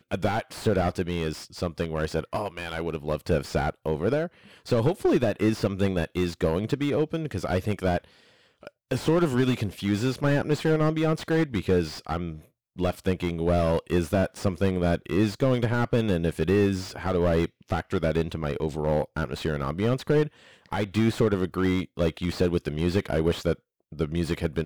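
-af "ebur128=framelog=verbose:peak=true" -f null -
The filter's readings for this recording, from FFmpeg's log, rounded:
Integrated loudness:
  I:         -26.5 LUFS
  Threshold: -36.7 LUFS
Loudness range:
  LRA:         3.4 LU
  Threshold: -46.6 LUFS
  LRA low:   -28.5 LUFS
  LRA high:  -25.2 LUFS
True peak:
  Peak:      -10.0 dBFS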